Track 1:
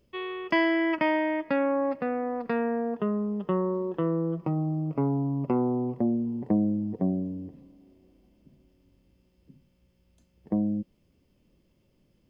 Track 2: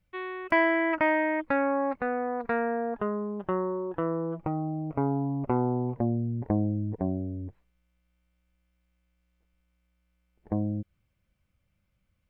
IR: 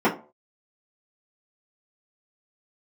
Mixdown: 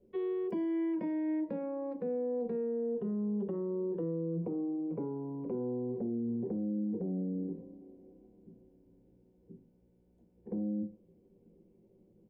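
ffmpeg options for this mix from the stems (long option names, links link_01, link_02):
-filter_complex "[0:a]firequalizer=gain_entry='entry(100,0);entry(240,-14);entry(400,-3);entry(1300,-26)':delay=0.05:min_phase=1,acompressor=threshold=-39dB:ratio=6,volume=-3.5dB,asplit=2[link_01][link_02];[link_02]volume=-7dB[link_03];[1:a]highshelf=frequency=3100:gain=10.5,alimiter=limit=-18.5dB:level=0:latency=1,volume=-19.5dB,asplit=2[link_04][link_05];[link_05]volume=-22dB[link_06];[2:a]atrim=start_sample=2205[link_07];[link_03][link_06]amix=inputs=2:normalize=0[link_08];[link_08][link_07]afir=irnorm=-1:irlink=0[link_09];[link_01][link_04][link_09]amix=inputs=3:normalize=0,acrossover=split=500|3000[link_10][link_11][link_12];[link_11]acompressor=threshold=-50dB:ratio=3[link_13];[link_10][link_13][link_12]amix=inputs=3:normalize=0,alimiter=level_in=4.5dB:limit=-24dB:level=0:latency=1:release=18,volume=-4.5dB"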